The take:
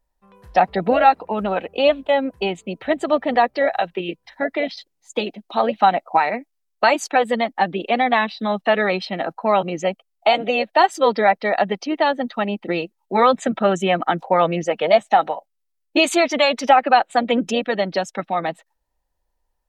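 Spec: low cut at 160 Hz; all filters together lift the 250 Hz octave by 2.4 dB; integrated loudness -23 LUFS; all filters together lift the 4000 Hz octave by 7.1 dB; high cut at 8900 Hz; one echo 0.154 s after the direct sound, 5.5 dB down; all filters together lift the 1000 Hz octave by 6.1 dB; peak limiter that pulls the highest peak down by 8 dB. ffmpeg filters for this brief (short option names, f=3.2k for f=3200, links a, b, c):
-af "highpass=160,lowpass=8.9k,equalizer=f=250:t=o:g=3.5,equalizer=f=1k:t=o:g=8,equalizer=f=4k:t=o:g=9,alimiter=limit=-4dB:level=0:latency=1,aecho=1:1:154:0.531,volume=-6.5dB"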